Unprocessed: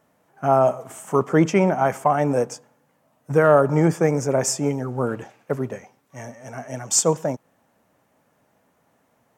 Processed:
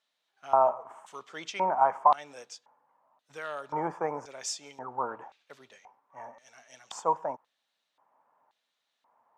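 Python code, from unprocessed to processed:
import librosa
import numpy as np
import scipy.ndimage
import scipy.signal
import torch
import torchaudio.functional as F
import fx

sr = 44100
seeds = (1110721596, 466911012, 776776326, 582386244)

y = fx.filter_lfo_bandpass(x, sr, shape='square', hz=0.94, low_hz=960.0, high_hz=3800.0, q=4.7)
y = F.gain(torch.from_numpy(y), 4.5).numpy()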